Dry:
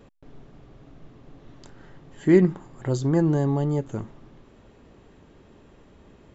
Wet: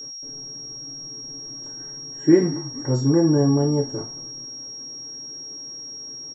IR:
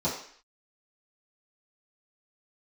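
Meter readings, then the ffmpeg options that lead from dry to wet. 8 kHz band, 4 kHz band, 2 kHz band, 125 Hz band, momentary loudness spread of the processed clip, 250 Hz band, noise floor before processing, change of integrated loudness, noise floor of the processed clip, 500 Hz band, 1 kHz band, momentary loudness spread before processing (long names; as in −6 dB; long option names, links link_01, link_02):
can't be measured, +22.0 dB, −2.0 dB, +1.5 dB, 15 LU, +3.5 dB, −54 dBFS, −1.0 dB, −36 dBFS, +2.5 dB, +1.0 dB, 16 LU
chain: -filter_complex "[0:a]asplit=5[link_01][link_02][link_03][link_04][link_05];[link_02]adelay=216,afreqshift=-42,volume=-19.5dB[link_06];[link_03]adelay=432,afreqshift=-84,volume=-25.7dB[link_07];[link_04]adelay=648,afreqshift=-126,volume=-31.9dB[link_08];[link_05]adelay=864,afreqshift=-168,volume=-38.1dB[link_09];[link_01][link_06][link_07][link_08][link_09]amix=inputs=5:normalize=0[link_10];[1:a]atrim=start_sample=2205,asetrate=74970,aresample=44100[link_11];[link_10][link_11]afir=irnorm=-1:irlink=0,aeval=exprs='val(0)+0.0562*sin(2*PI*5600*n/s)':channel_layout=same,volume=-8.5dB"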